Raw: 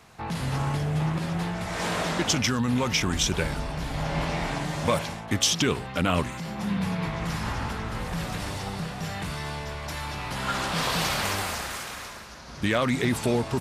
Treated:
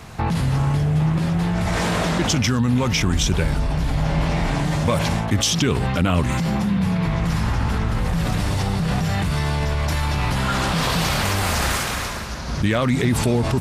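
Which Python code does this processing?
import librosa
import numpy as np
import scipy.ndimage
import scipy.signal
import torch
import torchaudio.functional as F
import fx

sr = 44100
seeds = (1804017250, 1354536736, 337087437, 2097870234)

p1 = fx.low_shelf(x, sr, hz=200.0, db=10.0)
p2 = fx.over_compress(p1, sr, threshold_db=-31.0, ratio=-1.0)
y = p1 + F.gain(torch.from_numpy(p2), 1.5).numpy()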